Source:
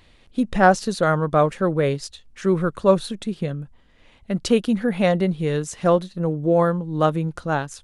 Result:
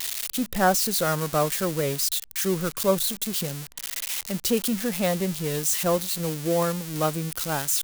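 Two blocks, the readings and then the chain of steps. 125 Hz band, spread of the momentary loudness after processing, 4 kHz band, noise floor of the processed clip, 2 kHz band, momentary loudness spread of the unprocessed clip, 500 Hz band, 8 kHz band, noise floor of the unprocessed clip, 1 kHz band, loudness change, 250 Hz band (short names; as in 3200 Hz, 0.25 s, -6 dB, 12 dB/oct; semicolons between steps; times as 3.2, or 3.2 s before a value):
-6.0 dB, 6 LU, +5.5 dB, -44 dBFS, -4.5 dB, 10 LU, -6.0 dB, +11.5 dB, -54 dBFS, -6.0 dB, -3.5 dB, -6.0 dB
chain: switching spikes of -12 dBFS; gain -6 dB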